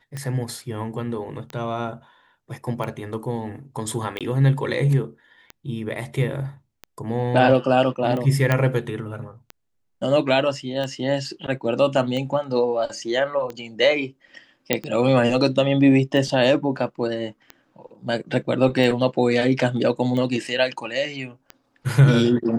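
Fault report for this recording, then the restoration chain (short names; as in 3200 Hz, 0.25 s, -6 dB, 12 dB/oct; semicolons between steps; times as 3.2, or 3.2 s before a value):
tick 45 rpm -18 dBFS
4.19–4.21 gap 17 ms
8.52 pop -7 dBFS
14.73 pop -3 dBFS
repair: de-click; interpolate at 4.19, 17 ms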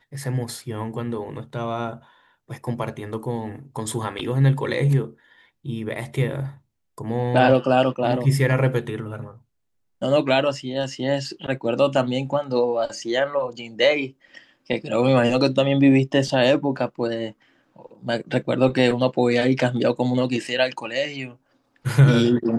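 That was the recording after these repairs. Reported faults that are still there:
none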